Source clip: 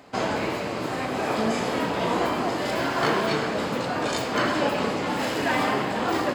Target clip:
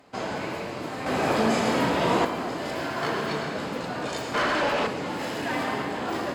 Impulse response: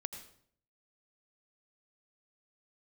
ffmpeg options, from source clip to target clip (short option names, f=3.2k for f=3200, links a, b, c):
-filter_complex "[1:a]atrim=start_sample=2205,asetrate=34398,aresample=44100[a];[0:a][a]afir=irnorm=-1:irlink=0,asettb=1/sr,asplit=3[b][c][d];[b]atrim=end=1.064[e];[c]atrim=start=1.06:end=2.25,asetpts=PTS-STARTPTS,afade=t=in:d=0.004:c=qsin,afade=t=out:st=1.186:d=0.004:c=qsin,acontrast=77[f];[d]atrim=start=2.246[g];[e][f]acrossfade=d=0.004:c1=hsin:c2=qsin[h];[h][g]acrossfade=d=0.004:c1=qsin:c2=hsin,asettb=1/sr,asplit=3[i][j][k];[i]atrim=end=4.344[l];[j]atrim=start=4.34:end=4.87,asetpts=PTS-STARTPTS,afade=t=in:d=0.004:c=qsin,afade=t=out:st=0.526:d=0.004:c=qsin,asplit=2[m][n];[n]highpass=f=720:p=1,volume=18dB,asoftclip=type=tanh:threshold=-12dB[o];[m][o]amix=inputs=2:normalize=0,lowpass=f=3.1k:p=1,volume=-6dB[p];[k]atrim=start=4.866[q];[l][p]acrossfade=d=0.004:c1=hsin:c2=qsin[r];[r][q]acrossfade=d=0.004:c1=qsin:c2=hsin,volume=-4.5dB"